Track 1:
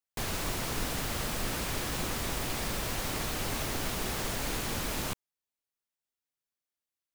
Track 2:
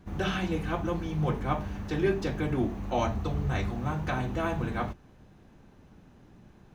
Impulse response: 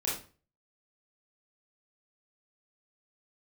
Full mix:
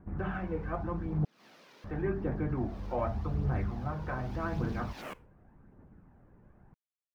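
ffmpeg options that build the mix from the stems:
-filter_complex "[0:a]afwtdn=0.00794,highpass=f=190:w=0.5412,highpass=f=190:w=1.3066,volume=-4.5dB,afade=t=in:st=2.49:d=0.34:silence=0.316228,afade=t=in:st=4.07:d=0.41:silence=0.421697,asplit=2[a][b];[b]volume=-23.5dB[c];[1:a]lowpass=f=1.8k:w=0.5412,lowpass=f=1.8k:w=1.3066,volume=-5dB,asplit=3[d][e][f];[d]atrim=end=1.25,asetpts=PTS-STARTPTS,afade=t=out:st=1.246:d=0.004:c=hsin[g];[e]atrim=start=1.25:end=1.84,asetpts=PTS-STARTPTS,volume=0[h];[f]atrim=start=1.84,asetpts=PTS-STARTPTS,afade=t=in:d=0.004:c=hsin[i];[g][h][i]concat=n=3:v=0:a=1,asplit=2[j][k];[k]apad=whole_len=315277[l];[a][l]sidechaincompress=threshold=-51dB:ratio=10:attack=20:release=137[m];[2:a]atrim=start_sample=2205[n];[c][n]afir=irnorm=-1:irlink=0[o];[m][j][o]amix=inputs=3:normalize=0,aphaser=in_gain=1:out_gain=1:delay=2.2:decay=0.38:speed=0.86:type=triangular"

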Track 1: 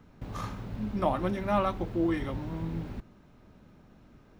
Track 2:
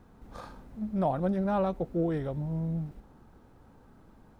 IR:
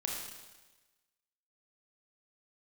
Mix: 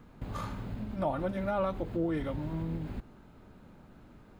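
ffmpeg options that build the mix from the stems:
-filter_complex "[0:a]bandreject=f=5.7k:w=5.2,alimiter=limit=-23.5dB:level=0:latency=1,acompressor=threshold=-34dB:ratio=6,volume=0.5dB[a];[1:a]equalizer=f=1.4k:w=7.1:g=6,volume=-1,volume=-4dB[b];[a][b]amix=inputs=2:normalize=0"

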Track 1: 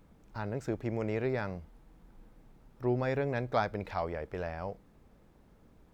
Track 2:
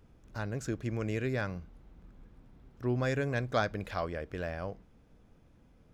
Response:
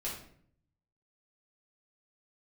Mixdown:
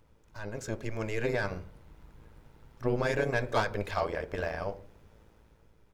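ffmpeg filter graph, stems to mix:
-filter_complex "[0:a]tremolo=f=110:d=0.889,aecho=1:1:2.1:0.4,volume=-3dB,asplit=2[a][b];[b]volume=-11.5dB[c];[1:a]highpass=840,asoftclip=type=tanh:threshold=-30dB,adelay=1.4,volume=-2dB[d];[2:a]atrim=start_sample=2205[e];[c][e]afir=irnorm=-1:irlink=0[f];[a][d][f]amix=inputs=3:normalize=0,dynaudnorm=f=110:g=13:m=7dB"

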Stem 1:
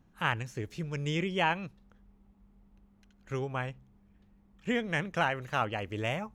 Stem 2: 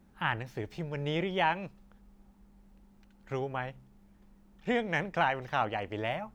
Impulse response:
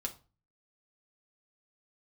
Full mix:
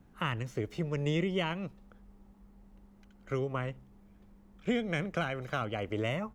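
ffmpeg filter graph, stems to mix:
-filter_complex "[0:a]equalizer=f=4.4k:w=0.93:g=-6.5,highshelf=f=7.9k:g=-9.5,volume=3dB[a];[1:a]volume=-1,adelay=1.3,volume=-3dB[b];[a][b]amix=inputs=2:normalize=0,acrossover=split=240|3000[c][d][e];[d]acompressor=threshold=-32dB:ratio=6[f];[c][f][e]amix=inputs=3:normalize=0"

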